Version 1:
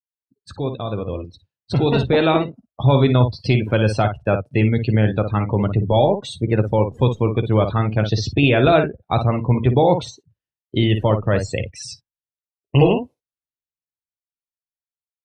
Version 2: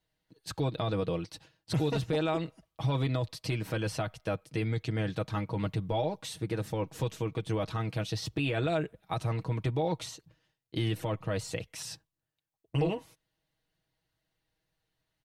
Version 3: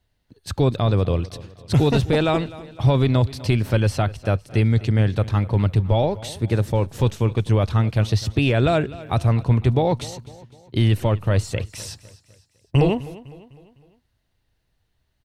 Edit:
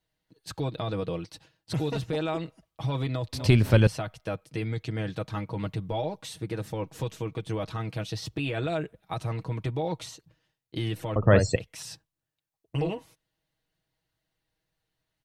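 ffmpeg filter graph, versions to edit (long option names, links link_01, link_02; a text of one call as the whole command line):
ffmpeg -i take0.wav -i take1.wav -i take2.wav -filter_complex "[1:a]asplit=3[link_01][link_02][link_03];[link_01]atrim=end=3.332[link_04];[2:a]atrim=start=3.328:end=3.872[link_05];[link_02]atrim=start=3.868:end=11.162[link_06];[0:a]atrim=start=11.158:end=11.562[link_07];[link_03]atrim=start=11.558[link_08];[link_04][link_05]acrossfade=duration=0.004:curve1=hsin:curve2=hsin[link_09];[link_09][link_06]acrossfade=duration=0.004:curve1=hsin:curve2=hsin[link_10];[link_10][link_07]acrossfade=duration=0.004:curve1=hsin:curve2=hsin[link_11];[link_11][link_08]acrossfade=duration=0.004:curve1=hsin:curve2=hsin" out.wav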